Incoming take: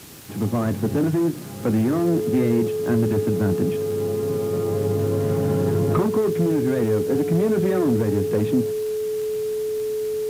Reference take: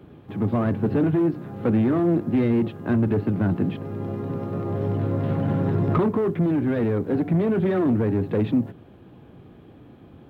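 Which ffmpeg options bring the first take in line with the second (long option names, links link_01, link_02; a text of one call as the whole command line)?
ffmpeg -i in.wav -af "adeclick=threshold=4,bandreject=frequency=430:width=30,afwtdn=0.0071" out.wav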